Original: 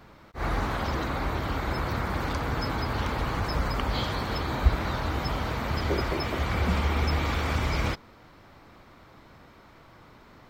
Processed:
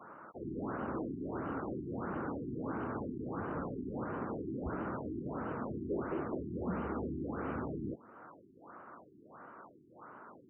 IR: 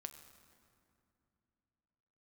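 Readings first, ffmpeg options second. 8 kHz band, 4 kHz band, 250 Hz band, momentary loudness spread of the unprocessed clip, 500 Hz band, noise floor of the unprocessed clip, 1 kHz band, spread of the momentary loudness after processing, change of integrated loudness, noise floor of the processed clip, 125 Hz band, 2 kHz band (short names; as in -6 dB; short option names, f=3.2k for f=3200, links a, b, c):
under -35 dB, under -35 dB, -4.5 dB, 4 LU, -6.5 dB, -53 dBFS, -12.0 dB, 17 LU, -10.5 dB, -61 dBFS, -15.0 dB, -16.5 dB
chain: -filter_complex "[0:a]highpass=250,lowpass=6.4k,acrossover=split=450|3000[a][b][c];[b]acompressor=threshold=-48dB:ratio=6[d];[a][d][c]amix=inputs=3:normalize=0,highshelf=f=1.8k:t=q:w=3:g=-8.5,volume=30.5dB,asoftclip=hard,volume=-30.5dB,afftfilt=real='re*lt(b*sr/1024,400*pow(3100/400,0.5+0.5*sin(2*PI*1.5*pts/sr)))':imag='im*lt(b*sr/1024,400*pow(3100/400,0.5+0.5*sin(2*PI*1.5*pts/sr)))':win_size=1024:overlap=0.75"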